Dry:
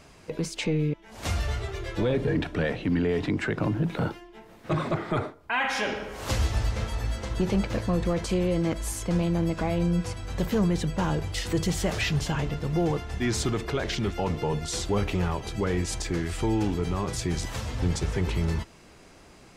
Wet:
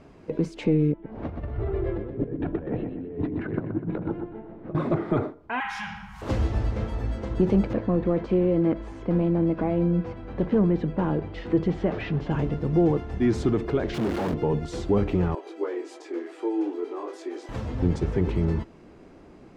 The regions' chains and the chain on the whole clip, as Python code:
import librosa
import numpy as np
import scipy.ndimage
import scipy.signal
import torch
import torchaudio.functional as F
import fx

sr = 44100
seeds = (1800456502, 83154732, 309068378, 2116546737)

y = fx.chain(x, sr, fx.over_compress(threshold_db=-31.0, ratio=-0.5),
    fx.spacing_loss(db_at_10k=41),
    fx.echo_feedback(ms=124, feedback_pct=44, wet_db=-7.5), at=(0.92, 4.75))
y = fx.chain(y, sr, fx.cheby1_bandstop(low_hz=190.0, high_hz=830.0, order=4),
    fx.high_shelf(hz=6700.0, db=10.5), at=(5.6, 6.22))
y = fx.chain(y, sr, fx.lowpass(hz=3100.0, slope=12),
    fx.peak_eq(hz=72.0, db=-8.5, octaves=1.6), at=(7.73, 12.31))
y = fx.chain(y, sr, fx.clip_1bit(),
    fx.highpass(hz=89.0, slope=12), at=(13.94, 14.34))
y = fx.chain(y, sr, fx.ellip_highpass(hz=320.0, order=4, stop_db=50),
    fx.detune_double(cents=17), at=(15.35, 17.49))
y = fx.lowpass(y, sr, hz=1200.0, slope=6)
y = fx.peak_eq(y, sr, hz=300.0, db=7.5, octaves=1.5)